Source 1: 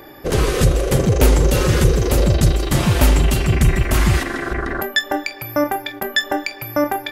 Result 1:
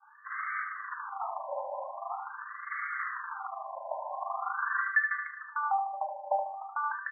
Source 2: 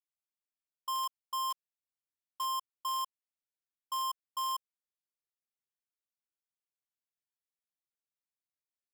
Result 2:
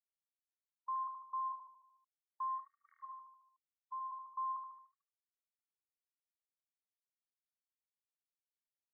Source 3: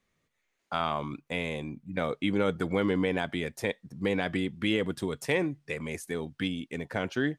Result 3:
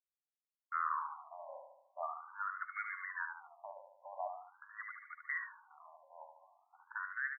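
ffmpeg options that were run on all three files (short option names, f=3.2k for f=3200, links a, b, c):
-filter_complex "[0:a]agate=range=-33dB:threshold=-37dB:ratio=3:detection=peak,asplit=2[a][b];[b]alimiter=limit=-13dB:level=0:latency=1,volume=-2dB[c];[a][c]amix=inputs=2:normalize=0,asoftclip=type=tanh:threshold=-2.5dB,highpass=580,lowpass=2.4k,aresample=16000,aeval=exprs='sgn(val(0))*max(abs(val(0))-0.00251,0)':c=same,aresample=44100,aecho=1:1:74|148|222|296|370|444|518:0.501|0.266|0.141|0.0746|0.0395|0.021|0.0111,afftfilt=real='re*between(b*sr/1024,740*pow(1600/740,0.5+0.5*sin(2*PI*0.44*pts/sr))/1.41,740*pow(1600/740,0.5+0.5*sin(2*PI*0.44*pts/sr))*1.41)':imag='im*between(b*sr/1024,740*pow(1600/740,0.5+0.5*sin(2*PI*0.44*pts/sr))/1.41,740*pow(1600/740,0.5+0.5*sin(2*PI*0.44*pts/sr))*1.41)':win_size=1024:overlap=0.75,volume=-7dB"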